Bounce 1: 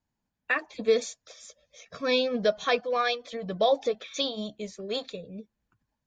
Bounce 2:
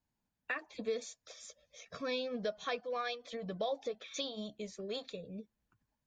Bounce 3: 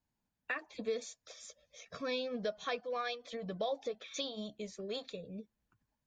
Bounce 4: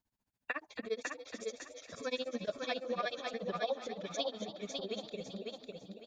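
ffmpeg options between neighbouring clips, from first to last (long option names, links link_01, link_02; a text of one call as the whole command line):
ffmpeg -i in.wav -af "acompressor=threshold=-37dB:ratio=2,volume=-3.5dB" out.wav
ffmpeg -i in.wav -af anull out.wav
ffmpeg -i in.wav -filter_complex "[0:a]asplit=2[link_01][link_02];[link_02]asplit=5[link_03][link_04][link_05][link_06][link_07];[link_03]adelay=275,afreqshift=53,volume=-12.5dB[link_08];[link_04]adelay=550,afreqshift=106,volume=-18.9dB[link_09];[link_05]adelay=825,afreqshift=159,volume=-25.3dB[link_10];[link_06]adelay=1100,afreqshift=212,volume=-31.6dB[link_11];[link_07]adelay=1375,afreqshift=265,volume=-38dB[link_12];[link_08][link_09][link_10][link_11][link_12]amix=inputs=5:normalize=0[link_13];[link_01][link_13]amix=inputs=2:normalize=0,tremolo=f=14:d=0.98,asplit=2[link_14][link_15];[link_15]aecho=0:1:551|1102|1653|2204:0.668|0.167|0.0418|0.0104[link_16];[link_14][link_16]amix=inputs=2:normalize=0,volume=3dB" out.wav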